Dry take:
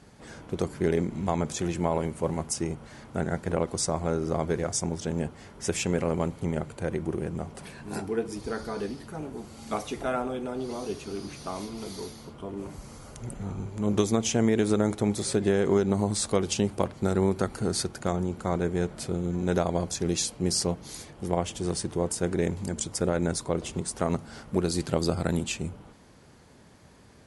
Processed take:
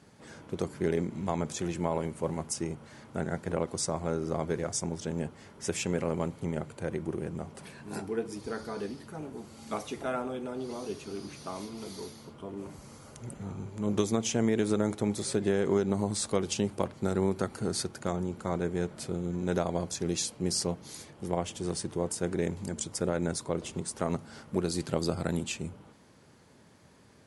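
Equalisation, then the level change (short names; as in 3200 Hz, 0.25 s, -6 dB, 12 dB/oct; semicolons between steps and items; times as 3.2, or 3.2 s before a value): HPF 84 Hz; notch 730 Hz, Q 24; -3.5 dB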